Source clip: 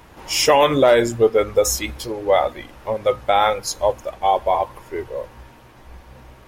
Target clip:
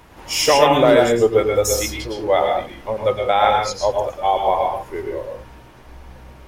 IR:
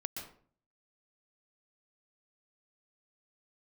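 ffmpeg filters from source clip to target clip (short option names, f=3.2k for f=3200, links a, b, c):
-filter_complex "[0:a]asettb=1/sr,asplit=3[a][b][c];[a]atrim=end=1.914[d];[b]atrim=start=1.91:end=3.92,asetpts=PTS-STARTPTS,afade=t=in:d=0.004:c=qsin,afade=t=out:st=2.006:d=0.004:c=qsin,acrossover=split=7200[e][f];[f]acompressor=threshold=-54dB:ratio=4:attack=1:release=60[g];[e][g]amix=inputs=2:normalize=0[h];[c]atrim=start=3.916[i];[d][h]acrossfade=d=0.004:c1=hsin:c2=qsin[j];[j][i]acrossfade=d=0.004:c1=qsin:c2=hsin[k];[1:a]atrim=start_sample=2205,afade=t=out:st=0.28:d=0.01,atrim=end_sample=12789,asetrate=48510,aresample=44100[l];[k][l]afir=irnorm=-1:irlink=0,volume=2.5dB"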